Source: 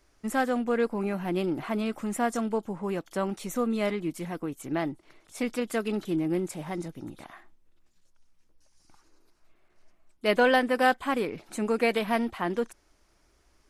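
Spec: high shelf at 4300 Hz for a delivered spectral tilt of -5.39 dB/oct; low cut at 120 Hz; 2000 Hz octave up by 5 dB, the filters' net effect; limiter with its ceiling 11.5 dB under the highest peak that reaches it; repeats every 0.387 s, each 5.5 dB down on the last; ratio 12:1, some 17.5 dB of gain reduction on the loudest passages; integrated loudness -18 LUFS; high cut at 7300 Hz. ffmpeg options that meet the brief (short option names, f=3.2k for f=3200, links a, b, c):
-af "highpass=120,lowpass=7.3k,equalizer=f=2k:t=o:g=7.5,highshelf=f=4.3k:g=-5.5,acompressor=threshold=-33dB:ratio=12,alimiter=level_in=8.5dB:limit=-24dB:level=0:latency=1,volume=-8.5dB,aecho=1:1:387|774|1161|1548|1935|2322|2709:0.531|0.281|0.149|0.079|0.0419|0.0222|0.0118,volume=23.5dB"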